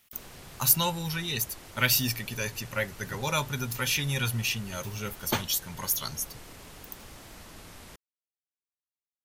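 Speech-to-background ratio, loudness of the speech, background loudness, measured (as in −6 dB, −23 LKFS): 19.0 dB, −28.5 LKFS, −47.5 LKFS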